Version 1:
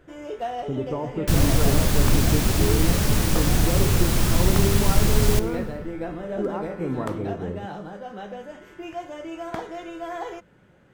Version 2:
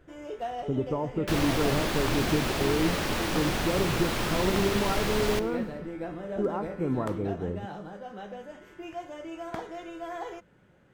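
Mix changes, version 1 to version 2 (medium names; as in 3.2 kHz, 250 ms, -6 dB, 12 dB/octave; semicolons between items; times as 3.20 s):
speech: send -7.0 dB; first sound -4.5 dB; second sound: add three-band isolator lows -15 dB, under 280 Hz, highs -12 dB, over 4.4 kHz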